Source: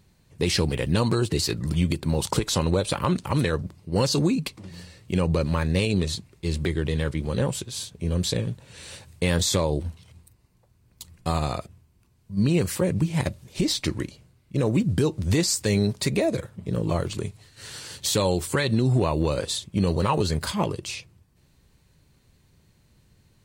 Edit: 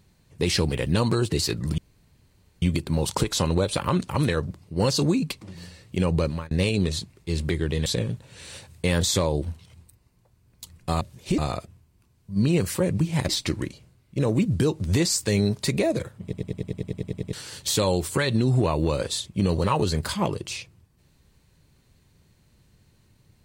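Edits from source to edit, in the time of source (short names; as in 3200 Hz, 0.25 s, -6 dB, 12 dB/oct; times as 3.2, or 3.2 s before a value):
1.78 insert room tone 0.84 s
5.39–5.67 fade out
7.02–8.24 cut
13.3–13.67 move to 11.39
16.61 stutter in place 0.10 s, 11 plays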